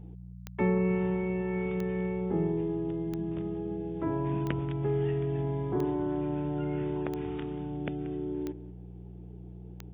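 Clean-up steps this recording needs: de-click; de-hum 60 Hz, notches 3; inverse comb 0.183 s -16.5 dB

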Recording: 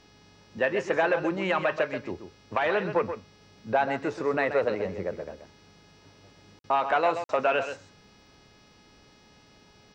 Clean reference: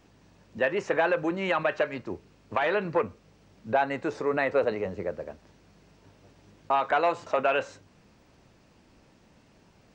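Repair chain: de-hum 419.4 Hz, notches 14; interpolate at 6.59/7.24, 52 ms; inverse comb 0.131 s -9.5 dB

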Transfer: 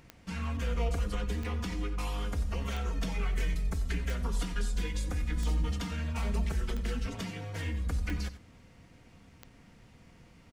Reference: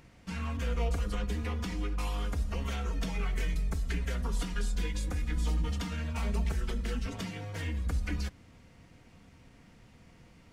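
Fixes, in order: de-click; inverse comb 90 ms -15 dB

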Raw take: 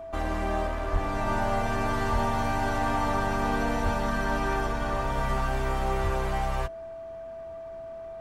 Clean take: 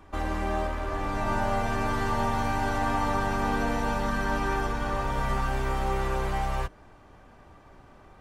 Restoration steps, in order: clip repair -18 dBFS; notch 660 Hz, Q 30; de-plosive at 0.92/2.12/3.84/6.03

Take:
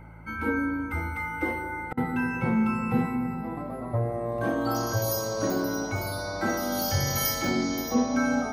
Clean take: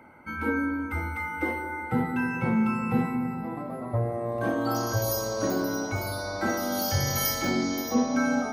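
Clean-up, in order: de-hum 54.8 Hz, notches 3; interpolate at 1.93, 42 ms

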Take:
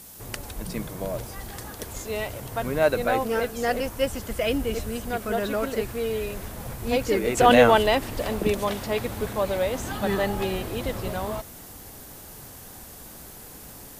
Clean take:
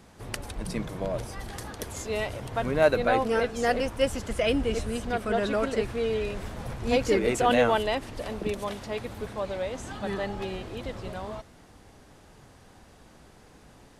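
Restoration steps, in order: 1.93–2.05 HPF 140 Hz 24 dB/oct; noise print and reduce 10 dB; 7.37 gain correction -6.5 dB

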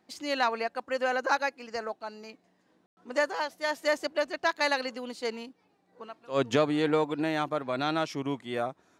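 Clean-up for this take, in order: room tone fill 2.86–2.97

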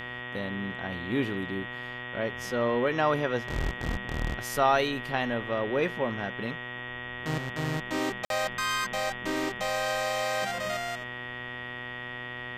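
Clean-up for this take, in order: de-hum 123.2 Hz, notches 29; notch 1900 Hz, Q 30; interpolate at 8.25, 52 ms

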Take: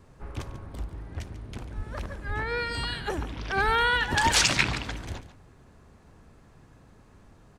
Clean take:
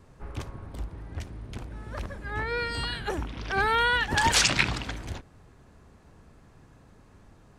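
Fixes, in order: clip repair -9.5 dBFS; 1.76–1.88 HPF 140 Hz 24 dB/oct; 2.27–2.39 HPF 140 Hz 24 dB/oct; 3.65–3.77 HPF 140 Hz 24 dB/oct; inverse comb 0.142 s -13.5 dB

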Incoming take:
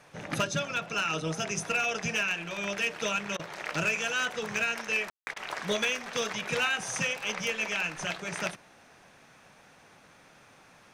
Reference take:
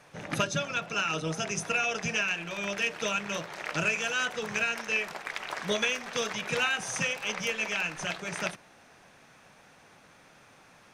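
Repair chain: clip repair -21 dBFS; room tone fill 5.1–5.27; interpolate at 3.37/5.34, 23 ms

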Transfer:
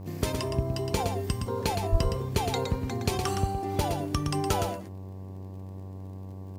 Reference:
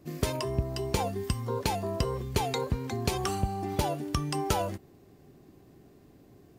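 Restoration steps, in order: de-click; de-hum 95.1 Hz, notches 12; 1.91–2.03 HPF 140 Hz 24 dB/oct; inverse comb 0.115 s -6 dB

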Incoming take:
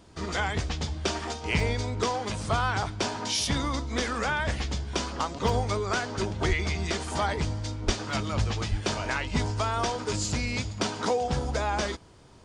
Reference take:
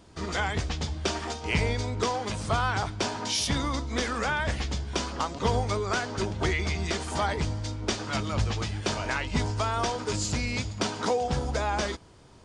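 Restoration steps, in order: 6.48–6.6 HPF 140 Hz 24 dB/oct; 7.85–7.97 HPF 140 Hz 24 dB/oct; 8.7–8.82 HPF 140 Hz 24 dB/oct; interpolate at 1.6/5.49/8.11, 1.4 ms

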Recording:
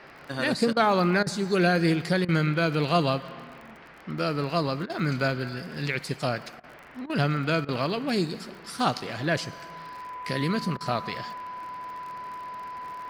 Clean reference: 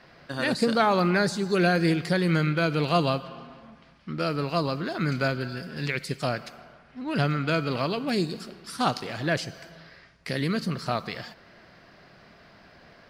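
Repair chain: de-click; notch 1000 Hz, Q 30; interpolate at 0.73/1.23/2.25/4.86/6.6/7.06/7.65/10.77, 35 ms; noise print and reduce 8 dB

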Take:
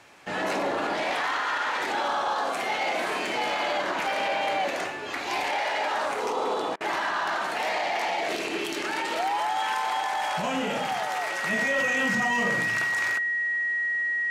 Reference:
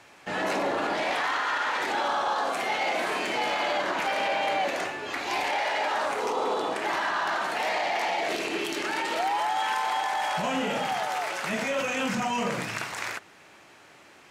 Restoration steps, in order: clip repair -18.5 dBFS; notch 1900 Hz, Q 30; interpolate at 6.76, 45 ms

